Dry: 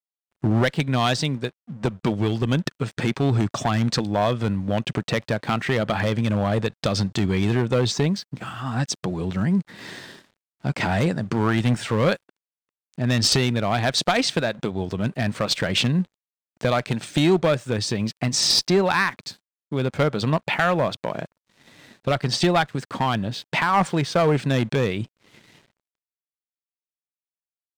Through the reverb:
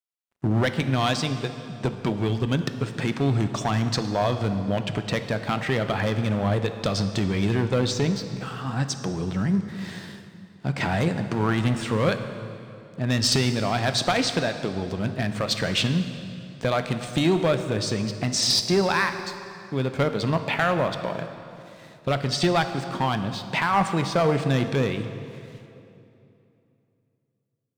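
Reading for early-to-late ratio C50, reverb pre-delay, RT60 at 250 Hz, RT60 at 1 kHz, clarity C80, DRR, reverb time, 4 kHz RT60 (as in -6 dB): 9.0 dB, 3 ms, 3.2 s, 2.7 s, 10.0 dB, 8.0 dB, 2.9 s, 2.2 s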